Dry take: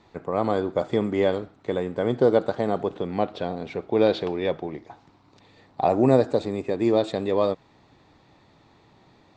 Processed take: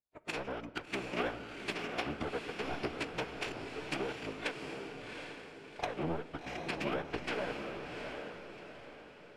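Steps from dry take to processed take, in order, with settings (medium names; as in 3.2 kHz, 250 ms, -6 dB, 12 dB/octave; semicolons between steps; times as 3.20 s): rattle on loud lows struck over -29 dBFS, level -10 dBFS; low-pass that closes with the level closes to 1.1 kHz, closed at -17.5 dBFS; power-law waveshaper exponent 2; peaking EQ 430 Hz +2 dB 0.37 oct; compression 8:1, threshold -33 dBFS, peak gain reduction 19.5 dB; phaser 1.4 Hz, delay 4.1 ms, feedback 58%; treble shelf 6.5 kHz +3.5 dB; formant-preserving pitch shift -8.5 st; echo that smears into a reverb 748 ms, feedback 42%, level -5 dB; simulated room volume 1400 m³, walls mixed, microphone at 0.34 m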